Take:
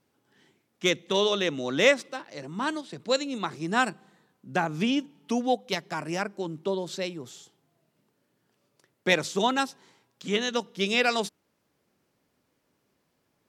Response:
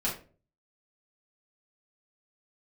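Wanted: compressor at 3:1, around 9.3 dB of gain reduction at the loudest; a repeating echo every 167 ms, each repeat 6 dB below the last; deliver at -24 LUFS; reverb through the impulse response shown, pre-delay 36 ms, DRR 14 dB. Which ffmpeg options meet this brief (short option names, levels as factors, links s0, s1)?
-filter_complex "[0:a]acompressor=threshold=0.0447:ratio=3,aecho=1:1:167|334|501|668|835|1002:0.501|0.251|0.125|0.0626|0.0313|0.0157,asplit=2[s0][s1];[1:a]atrim=start_sample=2205,adelay=36[s2];[s1][s2]afir=irnorm=-1:irlink=0,volume=0.0891[s3];[s0][s3]amix=inputs=2:normalize=0,volume=2.37"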